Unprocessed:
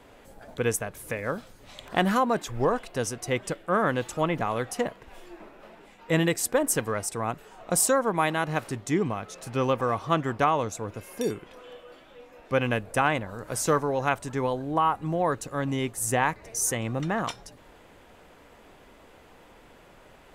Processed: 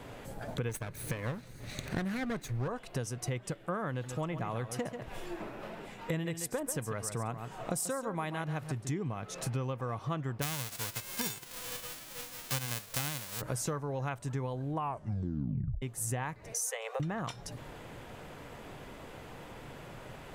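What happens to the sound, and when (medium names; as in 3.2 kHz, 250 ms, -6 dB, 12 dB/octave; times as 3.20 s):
0.69–2.68 s: comb filter that takes the minimum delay 0.47 ms
3.90–8.90 s: delay 138 ms -11.5 dB
10.41–13.40 s: formants flattened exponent 0.1
14.76 s: tape stop 1.06 s
16.53–17.00 s: Chebyshev high-pass 430 Hz, order 8
whole clip: peaking EQ 130 Hz +10.5 dB 0.74 oct; compression 6:1, threshold -38 dBFS; trim +4.5 dB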